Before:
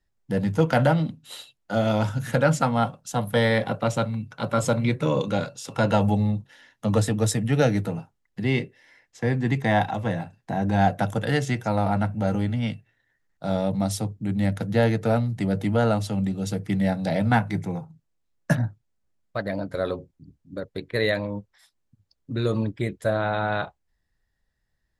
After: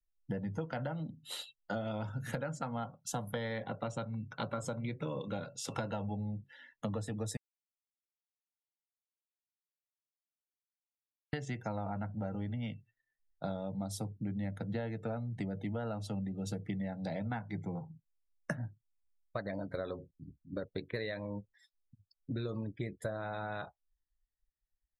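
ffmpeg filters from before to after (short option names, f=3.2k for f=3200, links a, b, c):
-filter_complex "[0:a]asplit=3[a][b][c];[a]atrim=end=7.37,asetpts=PTS-STARTPTS,afade=t=out:st=7.366:d=0.004:c=hsin[d];[b]atrim=start=7.37:end=11.33,asetpts=PTS-STARTPTS,volume=0[e];[c]atrim=start=11.33,asetpts=PTS-STARTPTS,afade=t=in:d=0.004:c=hsin[f];[d][e][f]concat=n=3:v=0:a=1,acompressor=threshold=-32dB:ratio=16,afftdn=nr=22:nf=-54,volume=-2dB"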